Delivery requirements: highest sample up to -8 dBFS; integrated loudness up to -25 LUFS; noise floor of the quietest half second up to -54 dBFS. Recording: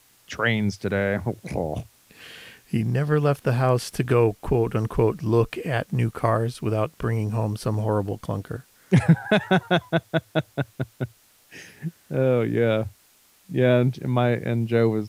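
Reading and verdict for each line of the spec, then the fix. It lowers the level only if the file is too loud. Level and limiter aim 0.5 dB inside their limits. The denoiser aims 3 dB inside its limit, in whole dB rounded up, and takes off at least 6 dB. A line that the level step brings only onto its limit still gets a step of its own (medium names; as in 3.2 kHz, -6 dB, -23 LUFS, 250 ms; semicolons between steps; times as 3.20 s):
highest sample -6.0 dBFS: fail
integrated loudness -24.0 LUFS: fail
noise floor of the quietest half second -58 dBFS: pass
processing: trim -1.5 dB; peak limiter -8.5 dBFS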